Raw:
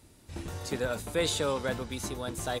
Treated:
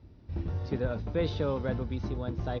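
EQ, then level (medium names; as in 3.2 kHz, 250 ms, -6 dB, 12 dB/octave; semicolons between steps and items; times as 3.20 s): high-pass 44 Hz; steep low-pass 5.8 kHz 96 dB/octave; tilt EQ -3.5 dB/octave; -4.5 dB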